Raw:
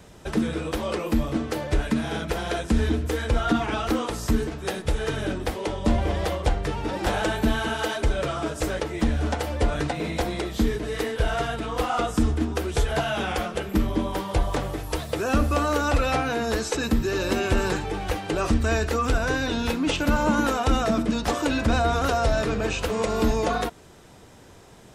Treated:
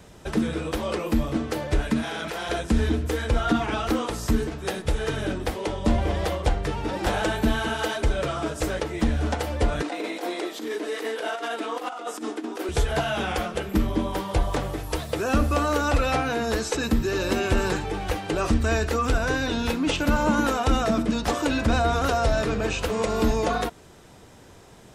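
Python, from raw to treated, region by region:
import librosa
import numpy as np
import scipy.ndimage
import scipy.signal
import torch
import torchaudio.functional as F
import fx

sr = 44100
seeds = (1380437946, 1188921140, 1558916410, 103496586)

y = fx.chain(x, sr, fx.highpass(hz=1300.0, slope=6),
    fx.tilt_eq(slope=-1.5),
    fx.env_flatten(amount_pct=100), at=(2.03, 2.49))
y = fx.chain(y, sr, fx.cheby1_highpass(hz=270.0, order=4),
    fx.over_compress(threshold_db=-29.0, ratio=-0.5), at=(9.82, 12.69))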